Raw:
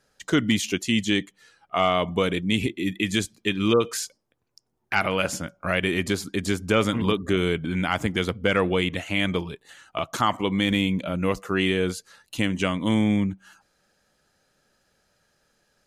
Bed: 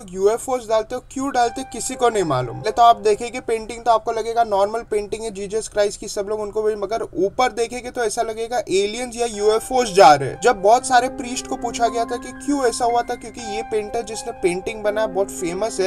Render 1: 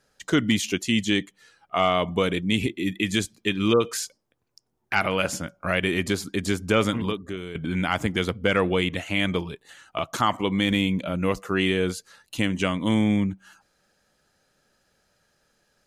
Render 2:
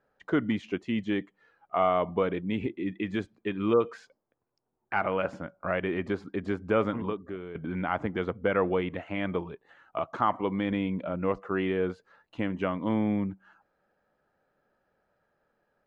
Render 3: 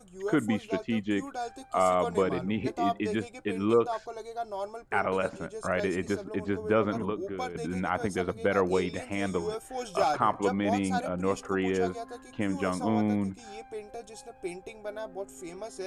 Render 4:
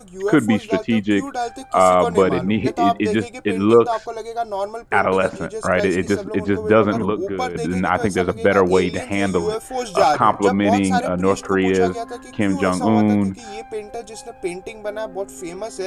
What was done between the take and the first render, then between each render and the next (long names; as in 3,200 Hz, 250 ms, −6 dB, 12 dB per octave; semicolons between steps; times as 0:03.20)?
0:06.89–0:07.55: fade out quadratic, to −13 dB
low-pass filter 1,200 Hz 12 dB per octave; low-shelf EQ 270 Hz −10 dB
mix in bed −17.5 dB
level +11 dB; brickwall limiter −2 dBFS, peak gain reduction 1.5 dB